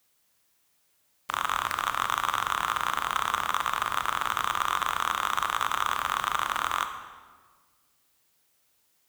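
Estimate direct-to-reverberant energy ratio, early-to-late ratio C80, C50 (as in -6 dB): 7.5 dB, 10.0 dB, 9.0 dB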